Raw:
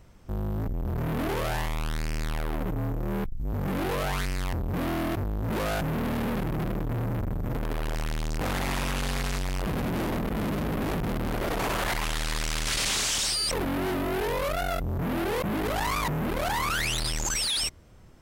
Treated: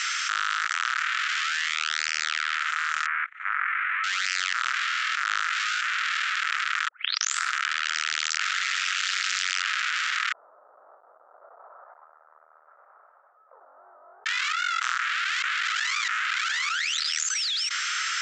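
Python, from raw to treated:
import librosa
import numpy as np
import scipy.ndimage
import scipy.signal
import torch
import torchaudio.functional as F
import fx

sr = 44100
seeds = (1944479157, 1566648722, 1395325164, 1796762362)

y = fx.ellip_bandpass(x, sr, low_hz=400.0, high_hz=2200.0, order=3, stop_db=40, at=(3.06, 4.04))
y = fx.steep_lowpass(y, sr, hz=620.0, slope=48, at=(10.32, 14.26))
y = fx.edit(y, sr, fx.tape_start(start_s=6.88, length_s=0.82), tone=tone)
y = scipy.signal.sosfilt(scipy.signal.cheby1(5, 1.0, [1300.0, 7400.0], 'bandpass', fs=sr, output='sos'), y)
y = fx.env_flatten(y, sr, amount_pct=100)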